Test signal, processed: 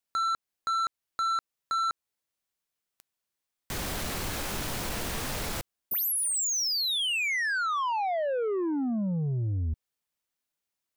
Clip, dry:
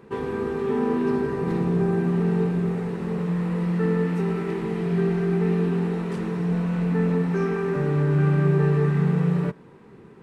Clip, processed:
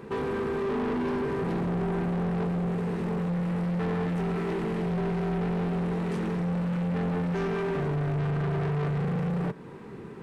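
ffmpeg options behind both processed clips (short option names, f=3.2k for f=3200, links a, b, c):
-filter_complex "[0:a]asplit=2[a][b];[b]acompressor=threshold=-32dB:ratio=6,volume=-0.5dB[c];[a][c]amix=inputs=2:normalize=0,asoftclip=type=tanh:threshold=-26dB"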